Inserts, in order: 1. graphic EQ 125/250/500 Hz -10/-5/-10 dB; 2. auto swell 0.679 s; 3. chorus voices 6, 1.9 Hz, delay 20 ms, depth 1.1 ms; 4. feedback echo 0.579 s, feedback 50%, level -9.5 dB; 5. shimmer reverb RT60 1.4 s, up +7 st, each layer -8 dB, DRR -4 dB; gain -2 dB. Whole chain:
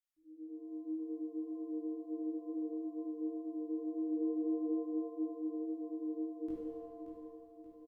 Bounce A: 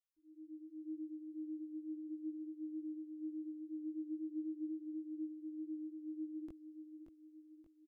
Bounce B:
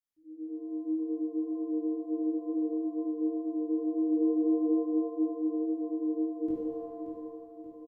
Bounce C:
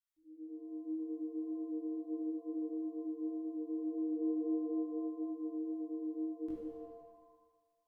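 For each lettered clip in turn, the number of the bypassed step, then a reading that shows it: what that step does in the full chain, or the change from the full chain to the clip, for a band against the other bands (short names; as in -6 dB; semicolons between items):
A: 5, loudness change -5.5 LU; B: 1, loudness change +8.5 LU; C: 4, momentary loudness spread change -2 LU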